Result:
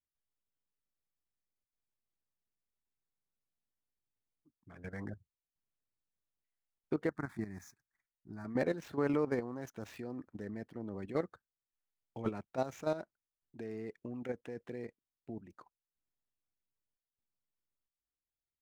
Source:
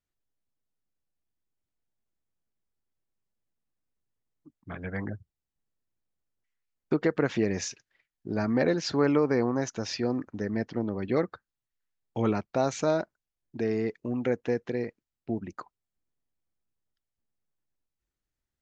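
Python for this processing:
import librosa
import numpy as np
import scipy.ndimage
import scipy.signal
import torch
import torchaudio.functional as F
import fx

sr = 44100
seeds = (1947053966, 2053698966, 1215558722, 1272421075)

y = scipy.signal.medfilt(x, 9)
y = fx.level_steps(y, sr, step_db=12)
y = fx.fixed_phaser(y, sr, hz=1200.0, stages=4, at=(7.09, 8.45))
y = F.gain(torch.from_numpy(y), -6.0).numpy()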